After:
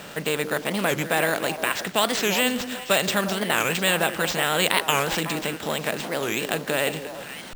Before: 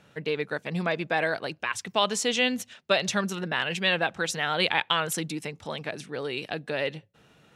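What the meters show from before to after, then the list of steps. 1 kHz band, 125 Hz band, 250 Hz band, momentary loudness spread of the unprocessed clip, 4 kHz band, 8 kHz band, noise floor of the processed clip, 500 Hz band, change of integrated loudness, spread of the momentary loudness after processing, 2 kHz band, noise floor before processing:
+4.0 dB, +3.5 dB, +4.5 dB, 10 LU, +3.0 dB, +6.5 dB, -39 dBFS, +4.0 dB, +4.0 dB, 6 LU, +4.0 dB, -61 dBFS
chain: spectral levelling over time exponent 0.6; word length cut 8-bit, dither triangular; repeats whose band climbs or falls 177 ms, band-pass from 310 Hz, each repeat 1.4 oct, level -5 dB; careless resampling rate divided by 4×, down none, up hold; warped record 45 rpm, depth 250 cents

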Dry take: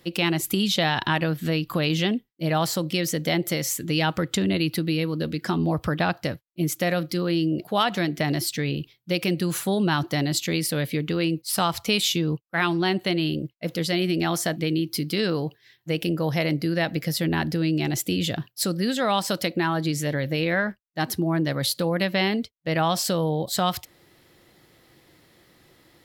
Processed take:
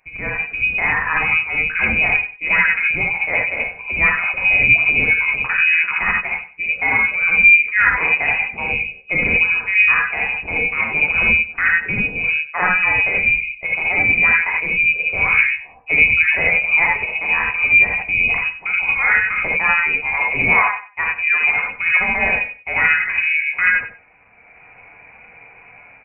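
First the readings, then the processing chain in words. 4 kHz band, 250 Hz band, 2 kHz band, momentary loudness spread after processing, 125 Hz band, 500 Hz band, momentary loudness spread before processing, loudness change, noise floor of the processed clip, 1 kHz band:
-6.5 dB, -10.5 dB, +18.0 dB, 8 LU, -8.0 dB, -5.5 dB, 5 LU, +10.0 dB, -45 dBFS, +4.0 dB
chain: spectral replace 22.85–23.42 s, 480–1500 Hz both; high-pass 190 Hz 12 dB/octave; dynamic bell 980 Hz, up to +5 dB, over -40 dBFS, Q 1.6; level rider gain up to 15 dB; flange 0.29 Hz, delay 7.2 ms, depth 7.5 ms, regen +47%; wow and flutter 25 cents; on a send: feedback delay 94 ms, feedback 21%, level -14 dB; on the sum: gated-style reverb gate 100 ms rising, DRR -2.5 dB; frequency inversion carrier 2.7 kHz; trim -1 dB

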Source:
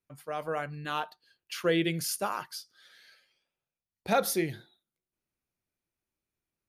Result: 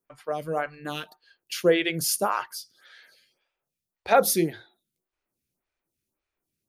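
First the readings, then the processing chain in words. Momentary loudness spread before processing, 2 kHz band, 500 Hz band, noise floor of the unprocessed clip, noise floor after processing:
15 LU, +4.5 dB, +7.0 dB, under -85 dBFS, under -85 dBFS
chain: lamp-driven phase shifter 1.8 Hz; trim +8 dB

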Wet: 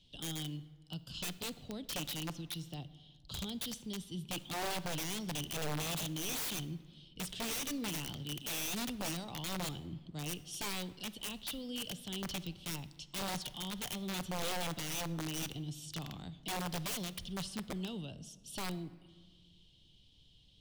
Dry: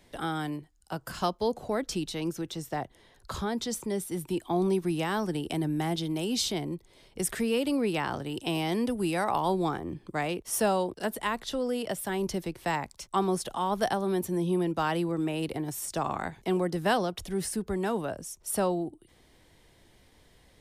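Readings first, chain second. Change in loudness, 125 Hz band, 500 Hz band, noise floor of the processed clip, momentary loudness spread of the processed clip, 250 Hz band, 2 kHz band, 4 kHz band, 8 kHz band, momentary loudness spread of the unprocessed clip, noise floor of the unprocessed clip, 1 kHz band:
-9.0 dB, -7.0 dB, -16.5 dB, -63 dBFS, 9 LU, -11.5 dB, -7.5 dB, -2.0 dB, -3.5 dB, 8 LU, -61 dBFS, -14.0 dB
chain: FFT filter 170 Hz 0 dB, 410 Hz -13 dB, 2 kHz -22 dB, 3 kHz +10 dB, 11 kHz -16 dB; integer overflow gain 28.5 dB; simulated room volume 1600 m³, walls mixed, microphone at 0.36 m; trim -4.5 dB

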